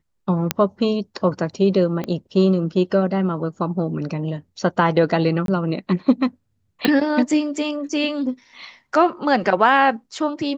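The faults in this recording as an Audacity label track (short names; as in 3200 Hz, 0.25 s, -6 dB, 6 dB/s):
0.510000	0.510000	pop -1 dBFS
2.040000	2.040000	pop -14 dBFS
5.460000	5.480000	gap 22 ms
6.850000	6.850000	pop -6 dBFS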